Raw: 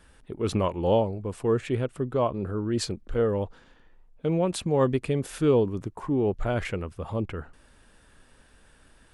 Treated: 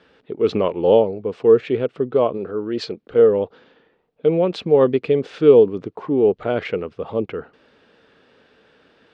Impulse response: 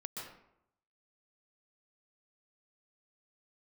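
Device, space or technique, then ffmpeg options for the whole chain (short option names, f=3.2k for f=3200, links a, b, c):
kitchen radio: -filter_complex "[0:a]asettb=1/sr,asplit=3[a][b][c];[a]atrim=end=2.374[d];[b]atrim=start=2.37:end=3.09,asetpts=PTS-STARTPTS,afade=t=in:d=0.004:c=qsin,afade=t=out:st=0.716:d=0.004:c=qsin,lowshelf=f=320:g=-6[e];[c]atrim=start=3.086[f];[d][e]acrossfade=d=0.004:c1=hsin:c2=qsin[g];[g][f]acrossfade=d=0.004:c1=qsin:c2=hsin,highpass=190,equalizer=f=450:t=q:w=4:g=8,equalizer=f=980:t=q:w=4:g=-4,equalizer=f=1.7k:t=q:w=4:g=-3,lowpass=f=4.4k:w=0.5412,lowpass=f=4.4k:w=1.3066,volume=5.5dB"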